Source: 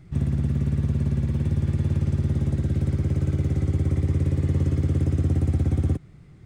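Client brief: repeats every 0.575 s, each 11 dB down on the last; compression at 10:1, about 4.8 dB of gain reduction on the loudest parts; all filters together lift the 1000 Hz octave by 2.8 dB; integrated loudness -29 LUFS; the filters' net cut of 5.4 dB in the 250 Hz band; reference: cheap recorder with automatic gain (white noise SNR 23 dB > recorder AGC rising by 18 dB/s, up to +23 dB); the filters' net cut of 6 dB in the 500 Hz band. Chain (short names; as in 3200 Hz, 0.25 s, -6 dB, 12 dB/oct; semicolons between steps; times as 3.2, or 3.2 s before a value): bell 250 Hz -8.5 dB; bell 500 Hz -5.5 dB; bell 1000 Hz +6 dB; compressor 10:1, threshold -24 dBFS; feedback echo 0.575 s, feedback 28%, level -11 dB; white noise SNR 23 dB; recorder AGC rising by 18 dB/s, up to +23 dB; gain +0.5 dB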